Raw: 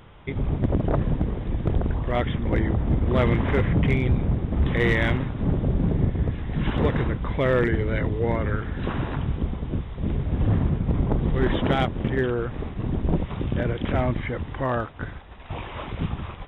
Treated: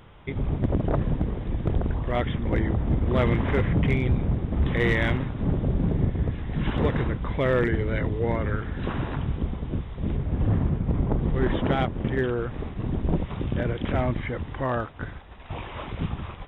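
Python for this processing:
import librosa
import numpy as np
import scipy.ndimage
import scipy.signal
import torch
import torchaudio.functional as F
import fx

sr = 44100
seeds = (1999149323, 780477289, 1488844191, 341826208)

y = fx.lowpass(x, sr, hz=2900.0, slope=6, at=(10.17, 12.08))
y = y * 10.0 ** (-1.5 / 20.0)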